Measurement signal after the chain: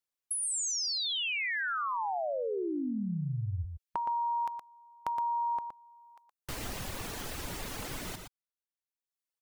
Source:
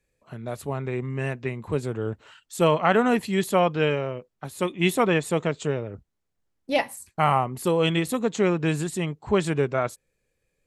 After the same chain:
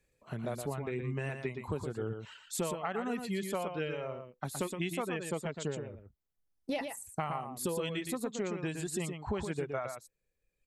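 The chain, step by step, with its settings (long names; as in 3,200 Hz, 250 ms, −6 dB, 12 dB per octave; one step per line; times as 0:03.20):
reverb reduction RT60 1.1 s
downward compressor 12 to 1, threshold −32 dBFS
on a send: single-tap delay 118 ms −6.5 dB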